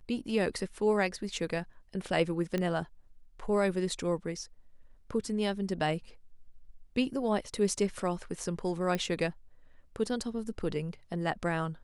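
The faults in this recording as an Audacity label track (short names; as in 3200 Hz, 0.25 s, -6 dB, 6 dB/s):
2.580000	2.580000	pop -19 dBFS
8.950000	8.950000	pop -18 dBFS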